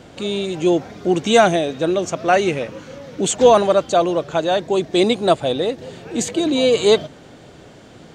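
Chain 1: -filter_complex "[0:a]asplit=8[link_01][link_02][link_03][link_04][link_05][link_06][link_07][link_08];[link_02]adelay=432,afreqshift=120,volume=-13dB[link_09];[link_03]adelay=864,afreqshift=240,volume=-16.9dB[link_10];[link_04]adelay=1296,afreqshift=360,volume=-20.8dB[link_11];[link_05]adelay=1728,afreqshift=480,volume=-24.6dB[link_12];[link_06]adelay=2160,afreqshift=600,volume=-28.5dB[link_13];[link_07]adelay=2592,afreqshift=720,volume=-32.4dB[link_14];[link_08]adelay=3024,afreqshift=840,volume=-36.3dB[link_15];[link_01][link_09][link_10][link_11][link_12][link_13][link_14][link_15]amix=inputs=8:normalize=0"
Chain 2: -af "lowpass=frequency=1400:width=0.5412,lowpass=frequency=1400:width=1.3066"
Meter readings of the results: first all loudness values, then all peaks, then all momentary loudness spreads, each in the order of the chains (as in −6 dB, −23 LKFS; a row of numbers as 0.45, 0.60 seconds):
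−18.0, −18.5 LKFS; −1.5, −2.0 dBFS; 13, 13 LU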